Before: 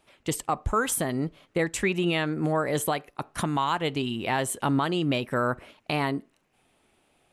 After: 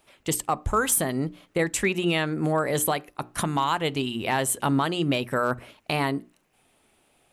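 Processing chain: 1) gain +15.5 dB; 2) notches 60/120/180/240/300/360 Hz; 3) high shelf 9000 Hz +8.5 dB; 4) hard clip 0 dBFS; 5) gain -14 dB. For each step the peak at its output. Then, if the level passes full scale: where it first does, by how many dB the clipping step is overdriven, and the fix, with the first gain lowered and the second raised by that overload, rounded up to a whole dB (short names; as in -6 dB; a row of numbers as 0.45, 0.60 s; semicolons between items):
+1.5, +1.5, +5.5, 0.0, -14.0 dBFS; step 1, 5.5 dB; step 1 +9.5 dB, step 5 -8 dB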